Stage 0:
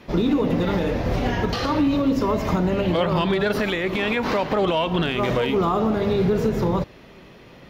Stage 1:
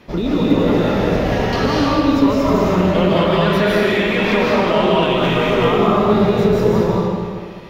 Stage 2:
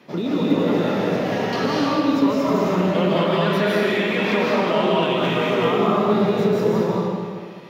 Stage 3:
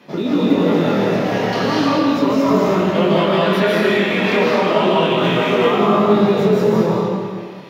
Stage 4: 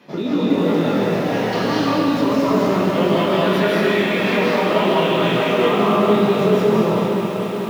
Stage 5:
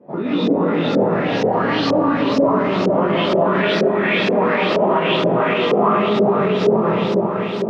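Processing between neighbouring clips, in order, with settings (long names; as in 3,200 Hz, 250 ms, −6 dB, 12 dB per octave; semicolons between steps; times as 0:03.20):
convolution reverb RT60 1.9 s, pre-delay 115 ms, DRR −5.5 dB
high-pass filter 140 Hz 24 dB per octave; level −4 dB
chorus effect 0.33 Hz, delay 19.5 ms, depth 7.2 ms; level +7 dB
feedback echo at a low word length 441 ms, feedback 80%, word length 6 bits, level −9.5 dB; level −2.5 dB
brickwall limiter −9.5 dBFS, peak gain reduction 6.5 dB; auto-filter low-pass saw up 2.1 Hz 470–5,900 Hz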